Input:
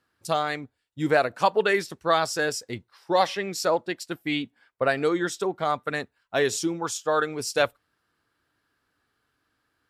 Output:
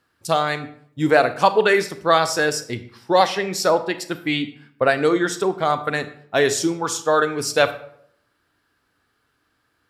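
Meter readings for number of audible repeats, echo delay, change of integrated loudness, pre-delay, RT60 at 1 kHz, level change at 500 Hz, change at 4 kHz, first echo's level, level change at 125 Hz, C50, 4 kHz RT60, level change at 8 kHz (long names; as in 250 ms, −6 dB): no echo audible, no echo audible, +6.0 dB, 27 ms, 0.60 s, +6.0 dB, +6.0 dB, no echo audible, +6.0 dB, 13.5 dB, 0.45 s, +5.5 dB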